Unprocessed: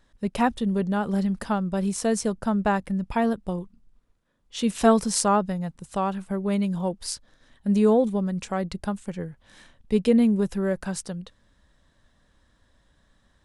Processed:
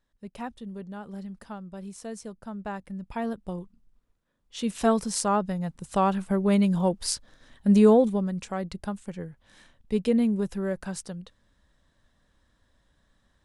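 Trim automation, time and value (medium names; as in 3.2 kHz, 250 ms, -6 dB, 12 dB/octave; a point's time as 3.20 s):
2.45 s -14 dB
3.60 s -4.5 dB
5.21 s -4.5 dB
6.03 s +3 dB
7.78 s +3 dB
8.47 s -4 dB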